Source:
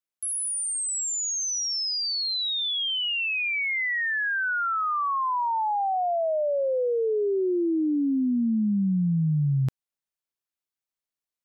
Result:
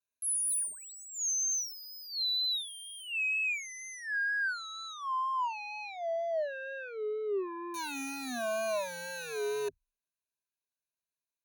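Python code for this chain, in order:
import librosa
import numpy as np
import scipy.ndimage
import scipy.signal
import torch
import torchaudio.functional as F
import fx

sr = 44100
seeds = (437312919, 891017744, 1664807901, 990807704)

y = (np.mod(10.0 ** (21.0 / 20.0) * x + 1.0, 2.0) - 1.0) / 10.0 ** (21.0 / 20.0)
y = fx.rider(y, sr, range_db=4, speed_s=2.0)
y = 10.0 ** (-30.0 / 20.0) * np.tanh(y / 10.0 ** (-30.0 / 20.0))
y = fx.vibrato(y, sr, rate_hz=2.1, depth_cents=92.0)
y = fx.ripple_eq(y, sr, per_octave=1.5, db=18)
y = F.gain(torch.from_numpy(y), -7.5).numpy()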